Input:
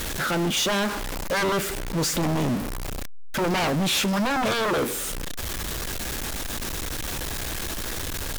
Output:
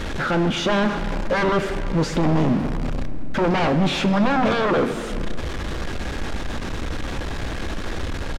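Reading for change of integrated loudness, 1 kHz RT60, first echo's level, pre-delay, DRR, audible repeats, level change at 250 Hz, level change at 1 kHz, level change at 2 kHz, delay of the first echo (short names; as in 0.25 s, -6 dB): +3.0 dB, 2.3 s, -21.0 dB, 4 ms, 9.5 dB, 1, +5.5 dB, +4.0 dB, +1.5 dB, 0.328 s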